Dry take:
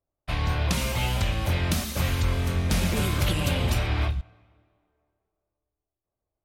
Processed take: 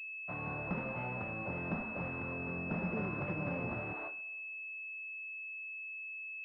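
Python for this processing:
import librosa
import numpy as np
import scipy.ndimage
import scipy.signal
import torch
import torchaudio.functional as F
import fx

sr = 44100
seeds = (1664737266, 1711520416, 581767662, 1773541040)

y = fx.highpass(x, sr, hz=fx.steps((0.0, 140.0), (3.93, 370.0)), slope=24)
y = fx.pwm(y, sr, carrier_hz=2600.0)
y = y * 10.0 ** (-8.5 / 20.0)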